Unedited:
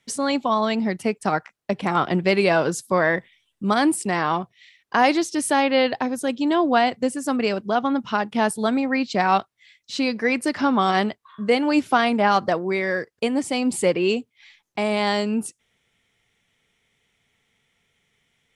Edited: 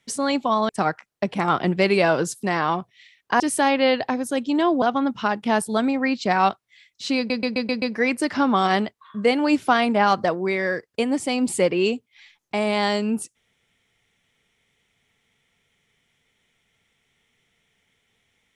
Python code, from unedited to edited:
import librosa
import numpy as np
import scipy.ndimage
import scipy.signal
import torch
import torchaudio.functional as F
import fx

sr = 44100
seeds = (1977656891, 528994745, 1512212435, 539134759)

y = fx.edit(x, sr, fx.cut(start_s=0.69, length_s=0.47),
    fx.cut(start_s=2.9, length_s=1.15),
    fx.cut(start_s=5.02, length_s=0.3),
    fx.cut(start_s=6.74, length_s=0.97),
    fx.stutter(start_s=10.06, slice_s=0.13, count=6), tone=tone)